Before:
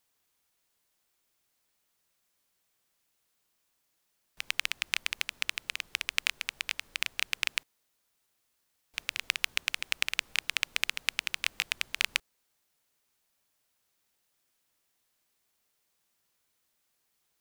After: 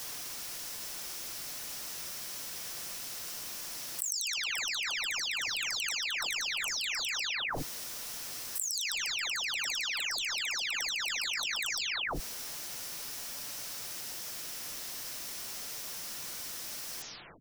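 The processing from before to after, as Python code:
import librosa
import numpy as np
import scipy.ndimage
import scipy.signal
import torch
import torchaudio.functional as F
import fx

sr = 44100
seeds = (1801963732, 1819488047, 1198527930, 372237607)

y = fx.spec_delay(x, sr, highs='early', ms=384)
y = fx.peak_eq(y, sr, hz=5500.0, db=7.0, octaves=0.46)
y = fx.env_flatten(y, sr, amount_pct=100)
y = y * librosa.db_to_amplitude(-5.0)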